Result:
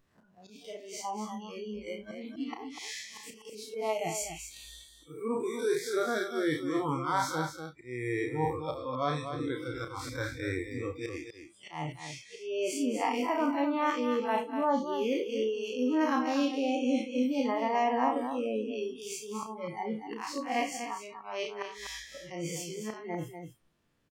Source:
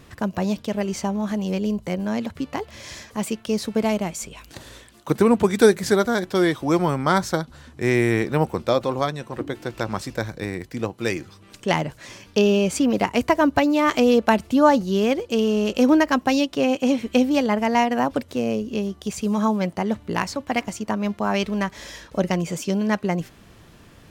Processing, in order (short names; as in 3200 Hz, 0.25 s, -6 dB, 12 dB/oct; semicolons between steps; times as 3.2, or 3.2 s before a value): time blur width 98 ms; reverse; compressor 16:1, threshold -27 dBFS, peak gain reduction 15.5 dB; reverse; spectral noise reduction 25 dB; dynamic EQ 970 Hz, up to +6 dB, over -47 dBFS, Q 1.1; auto swell 0.267 s; low shelf 85 Hz -6 dB; on a send: loudspeakers at several distances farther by 11 m -7 dB, 84 m -8 dB